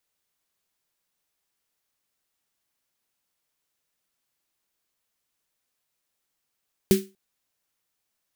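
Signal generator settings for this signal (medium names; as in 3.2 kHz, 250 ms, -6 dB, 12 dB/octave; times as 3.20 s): snare drum length 0.24 s, tones 200 Hz, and 380 Hz, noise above 1.7 kHz, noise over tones -10 dB, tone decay 0.26 s, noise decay 0.26 s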